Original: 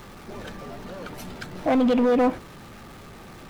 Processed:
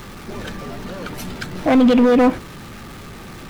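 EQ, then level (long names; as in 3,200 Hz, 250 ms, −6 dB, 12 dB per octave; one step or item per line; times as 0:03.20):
parametric band 680 Hz −4.5 dB 1.4 octaves
+8.5 dB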